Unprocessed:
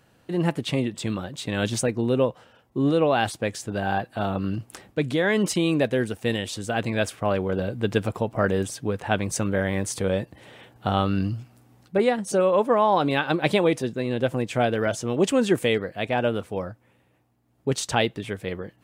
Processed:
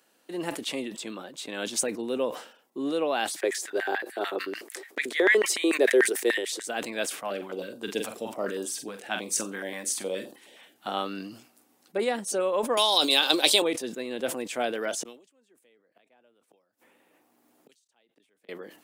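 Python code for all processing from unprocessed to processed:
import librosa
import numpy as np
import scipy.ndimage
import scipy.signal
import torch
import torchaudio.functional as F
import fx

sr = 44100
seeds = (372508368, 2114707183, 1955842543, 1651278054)

y = fx.chain(x, sr, fx.high_shelf(hz=3900.0, db=-5.5),
    fx.notch(hz=1900.0, q=27.0), at=(0.97, 1.76))
y = fx.chain(y, sr, fx.peak_eq(hz=2800.0, db=-5.5, octaves=0.28),
    fx.filter_lfo_highpass(shape='square', hz=6.8, low_hz=380.0, high_hz=1900.0, q=5.8), at=(3.36, 6.68))
y = fx.chain(y, sr, fx.room_flutter(wall_m=7.7, rt60_s=0.24),
    fx.filter_held_notch(hz=9.5, low_hz=360.0, high_hz=2100.0), at=(7.2, 10.88))
y = fx.chain(y, sr, fx.highpass(hz=280.0, slope=12),
    fx.high_shelf_res(hz=2800.0, db=13.5, q=1.5),
    fx.band_squash(depth_pct=100), at=(12.77, 13.62))
y = fx.chain(y, sr, fx.gate_flip(shuts_db=-26.0, range_db=-40),
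    fx.band_squash(depth_pct=100), at=(15.03, 18.49))
y = scipy.signal.sosfilt(scipy.signal.butter(4, 250.0, 'highpass', fs=sr, output='sos'), y)
y = fx.high_shelf(y, sr, hz=4100.0, db=11.0)
y = fx.sustainer(y, sr, db_per_s=110.0)
y = y * 10.0 ** (-6.5 / 20.0)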